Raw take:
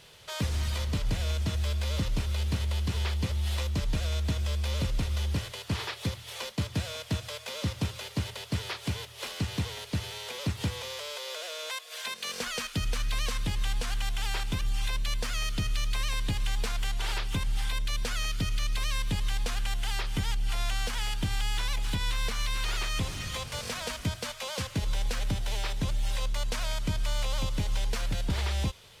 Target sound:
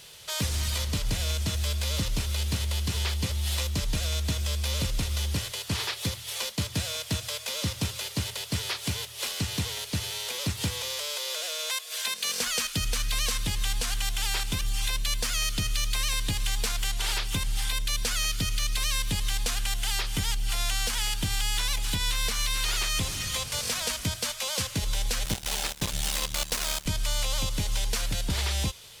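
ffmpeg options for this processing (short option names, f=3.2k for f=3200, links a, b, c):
-filter_complex "[0:a]highshelf=f=3.6k:g=12,asettb=1/sr,asplit=3[a][b][c];[a]atrim=end=25.254[d];[b]atrim=start=25.25:end=26.86,asetpts=PTS-STARTPTS,afade=t=in:d=0.004:c=qsin,afade=t=out:st=1.606:d=0.004:c=qsin,acrusher=bits=3:mix=0:aa=0.5[e];[c]atrim=start=26.856[f];[d][e]acrossfade=d=0.004:c1=hsin:c2=qsin[g];[g][f]acrossfade=d=0.004:c1=qsin:c2=hsin"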